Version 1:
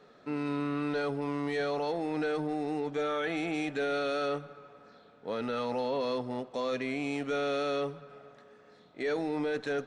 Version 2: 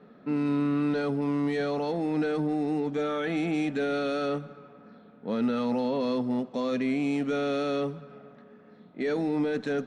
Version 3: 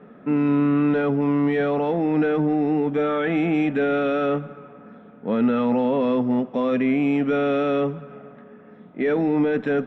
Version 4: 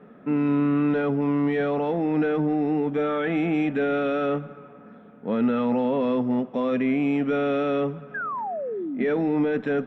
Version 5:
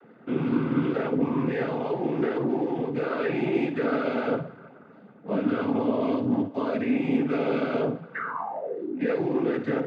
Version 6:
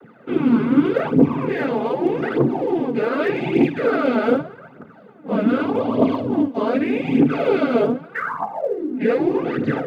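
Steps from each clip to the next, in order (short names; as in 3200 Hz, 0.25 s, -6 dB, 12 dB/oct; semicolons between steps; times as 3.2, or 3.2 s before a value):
low-pass opened by the level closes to 2500 Hz, open at -30.5 dBFS; bell 210 Hz +14 dB 0.94 oct
polynomial smoothing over 25 samples; gain +7 dB
painted sound fall, 8.14–9.05, 210–1700 Hz -27 dBFS; gain -2.5 dB
flutter echo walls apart 9.7 m, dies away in 0.34 s; noise vocoder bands 16; gain -2.5 dB
phaser 0.83 Hz, delay 4.9 ms, feedback 65%; gain +4.5 dB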